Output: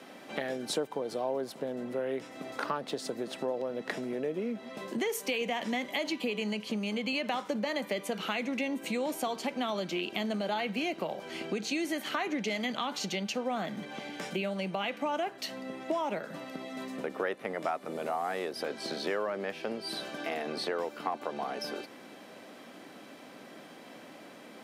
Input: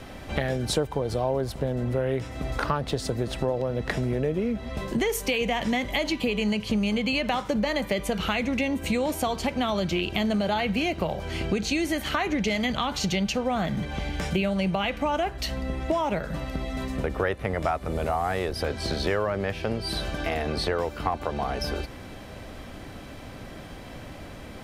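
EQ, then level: high-pass 210 Hz 24 dB/octave; -6.0 dB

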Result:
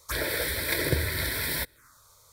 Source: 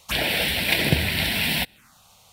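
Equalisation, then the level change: static phaser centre 760 Hz, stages 6; 0.0 dB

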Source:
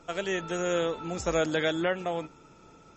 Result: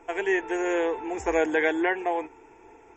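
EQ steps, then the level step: high-order bell 900 Hz +9 dB 2.9 oct; static phaser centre 860 Hz, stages 8; 0.0 dB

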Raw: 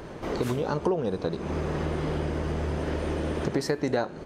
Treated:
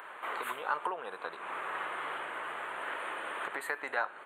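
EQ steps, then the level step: resonant high-pass 1.2 kHz, resonance Q 1.7; Butterworth band-stop 5.4 kHz, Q 0.95; 0.0 dB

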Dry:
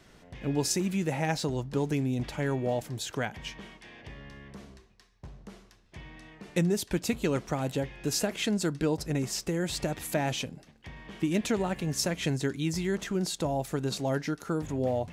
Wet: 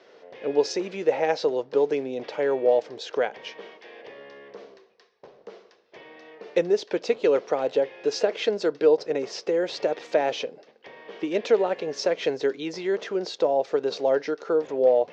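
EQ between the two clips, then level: resonant high-pass 470 Hz, resonance Q 4; resonant low-pass 5.6 kHz, resonance Q 2; distance through air 190 m; +2.5 dB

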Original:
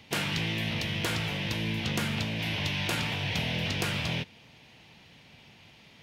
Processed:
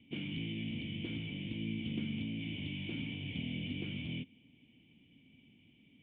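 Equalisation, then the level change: cascade formant filter i; +2.0 dB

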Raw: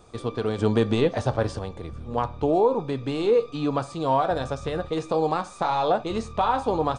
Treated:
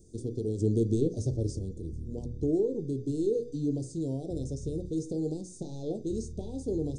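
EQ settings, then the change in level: elliptic band-stop 370–5900 Hz, stop band 80 dB; hum notches 60/120/180/240/300/360/420/480 Hz; dynamic bell 220 Hz, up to -5 dB, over -38 dBFS, Q 2.4; 0.0 dB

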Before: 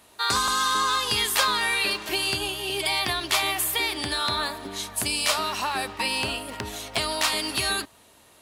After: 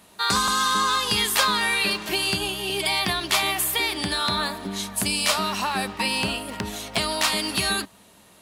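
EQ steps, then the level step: peaking EQ 190 Hz +13.5 dB 0.32 oct; +1.5 dB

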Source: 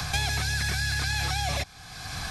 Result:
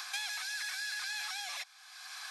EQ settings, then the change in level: high-pass 960 Hz 24 dB/octave; -8.0 dB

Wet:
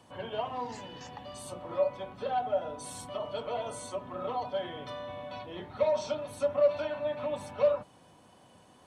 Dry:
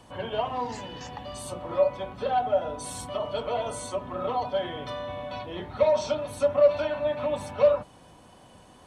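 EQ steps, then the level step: high-pass 89 Hz; -5.5 dB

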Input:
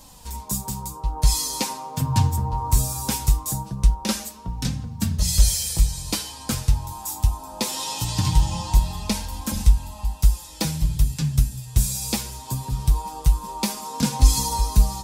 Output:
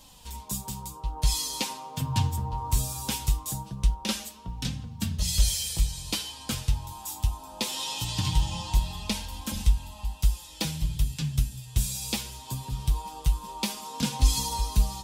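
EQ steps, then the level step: peaking EQ 3.1 kHz +8.5 dB 0.77 oct; -6.5 dB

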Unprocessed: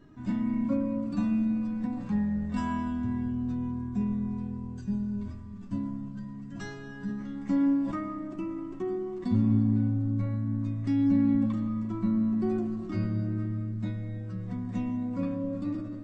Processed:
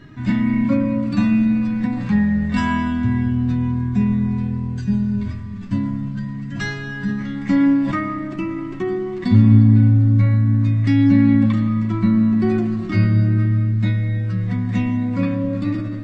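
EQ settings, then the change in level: graphic EQ 125/2000/4000 Hz +9/+11/+7 dB; +8.0 dB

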